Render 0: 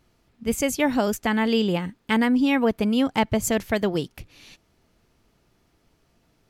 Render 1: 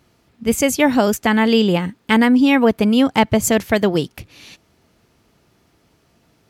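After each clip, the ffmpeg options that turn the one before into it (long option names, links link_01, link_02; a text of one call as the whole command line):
ffmpeg -i in.wav -af "highpass=66,volume=7dB" out.wav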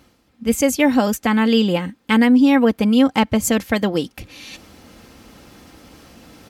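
ffmpeg -i in.wav -af "aecho=1:1:3.8:0.47,areverse,acompressor=mode=upward:threshold=-27dB:ratio=2.5,areverse,volume=-2.5dB" out.wav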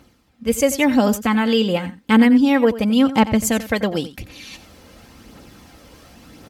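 ffmpeg -i in.wav -af "aphaser=in_gain=1:out_gain=1:delay=2.1:decay=0.34:speed=0.93:type=triangular,aecho=1:1:89:0.178,volume=-1dB" out.wav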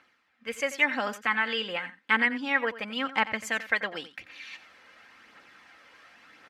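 ffmpeg -i in.wav -af "bandpass=frequency=1800:width_type=q:width=2:csg=0,volume=1.5dB" out.wav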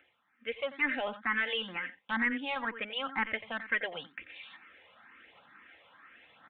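ffmpeg -i in.wav -filter_complex "[0:a]asoftclip=type=tanh:threshold=-21dB,aresample=8000,aresample=44100,asplit=2[link_01][link_02];[link_02]afreqshift=2.1[link_03];[link_01][link_03]amix=inputs=2:normalize=1" out.wav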